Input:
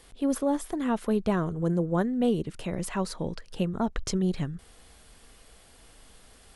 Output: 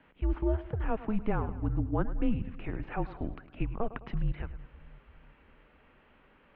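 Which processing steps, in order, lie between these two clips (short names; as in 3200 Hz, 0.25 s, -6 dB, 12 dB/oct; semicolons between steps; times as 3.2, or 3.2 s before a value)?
split-band echo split 320 Hz, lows 0.335 s, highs 0.105 s, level -15 dB; mistuned SSB -220 Hz 170–2800 Hz; gain -2 dB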